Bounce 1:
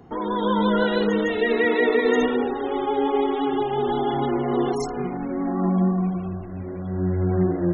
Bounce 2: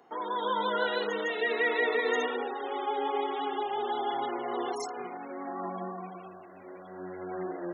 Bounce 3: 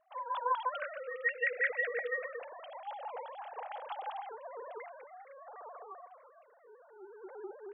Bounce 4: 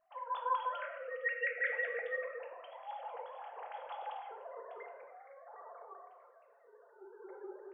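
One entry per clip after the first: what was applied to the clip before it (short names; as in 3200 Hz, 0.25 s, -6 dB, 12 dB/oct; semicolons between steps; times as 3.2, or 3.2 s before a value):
HPF 570 Hz 12 dB/oct; gain -4 dB
sine-wave speech; gain -7.5 dB
reverb RT60 0.80 s, pre-delay 6 ms, DRR 2.5 dB; gain -5 dB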